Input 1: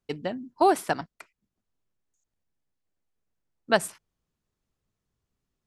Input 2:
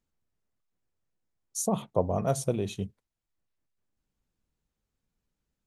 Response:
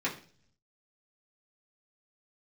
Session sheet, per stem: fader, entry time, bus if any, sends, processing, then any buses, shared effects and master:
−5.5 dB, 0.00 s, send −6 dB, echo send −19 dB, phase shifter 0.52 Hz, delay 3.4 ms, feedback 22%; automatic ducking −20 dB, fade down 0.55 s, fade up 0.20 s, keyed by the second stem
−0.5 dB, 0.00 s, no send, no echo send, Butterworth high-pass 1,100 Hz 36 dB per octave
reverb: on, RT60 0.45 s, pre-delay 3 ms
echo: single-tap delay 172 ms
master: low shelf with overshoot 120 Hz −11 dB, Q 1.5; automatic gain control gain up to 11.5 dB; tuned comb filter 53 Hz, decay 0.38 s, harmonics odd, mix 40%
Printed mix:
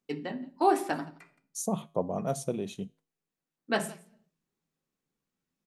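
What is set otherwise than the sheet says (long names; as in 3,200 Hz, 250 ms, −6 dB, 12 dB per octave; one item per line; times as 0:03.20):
stem 2: missing Butterworth high-pass 1,100 Hz 36 dB per octave
master: missing automatic gain control gain up to 11.5 dB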